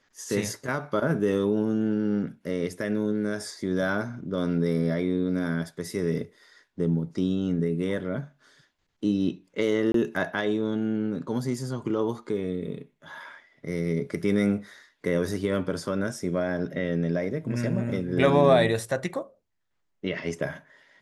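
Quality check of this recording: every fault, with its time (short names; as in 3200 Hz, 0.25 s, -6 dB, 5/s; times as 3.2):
9.92–9.94 gap 23 ms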